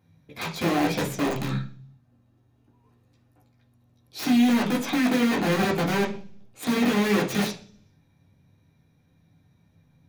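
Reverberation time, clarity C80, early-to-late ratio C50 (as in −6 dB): 0.45 s, 16.0 dB, 11.0 dB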